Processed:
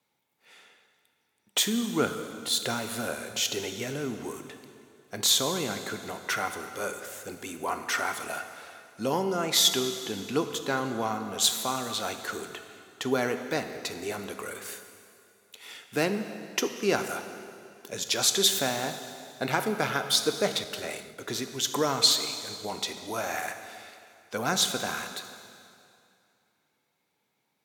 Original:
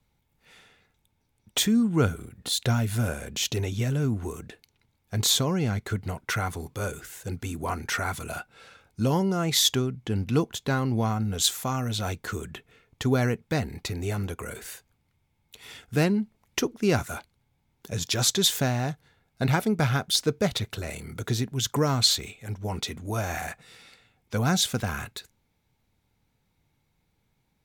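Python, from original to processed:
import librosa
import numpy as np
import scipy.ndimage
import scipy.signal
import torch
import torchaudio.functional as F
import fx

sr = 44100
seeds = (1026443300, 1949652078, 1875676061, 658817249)

y = scipy.signal.sosfilt(scipy.signal.butter(2, 320.0, 'highpass', fs=sr, output='sos'), x)
y = fx.rev_plate(y, sr, seeds[0], rt60_s=2.5, hf_ratio=0.9, predelay_ms=0, drr_db=7.0)
y = fx.band_widen(y, sr, depth_pct=100, at=(20.64, 21.29))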